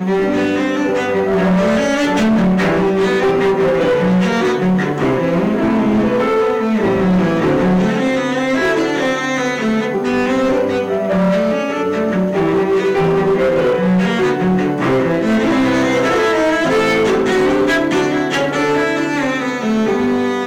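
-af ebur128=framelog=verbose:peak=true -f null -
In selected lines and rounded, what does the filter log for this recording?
Integrated loudness:
  I:         -15.0 LUFS
  Threshold: -25.0 LUFS
Loudness range:
  LRA:         1.9 LU
  Threshold: -34.9 LUFS
  LRA low:   -16.0 LUFS
  LRA high:  -14.1 LUFS
True peak:
  Peak:      -10.3 dBFS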